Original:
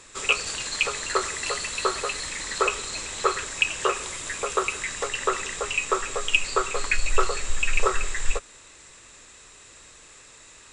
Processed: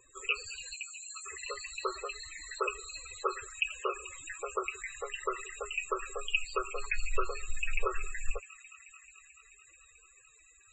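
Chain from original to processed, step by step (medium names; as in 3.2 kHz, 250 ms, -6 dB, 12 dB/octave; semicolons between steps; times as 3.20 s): 0.73–1.26 s: differentiator; on a send: feedback echo behind a high-pass 218 ms, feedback 83%, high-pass 1.9 kHz, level -14 dB; on the sum: loudest bins only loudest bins 32; trim -9 dB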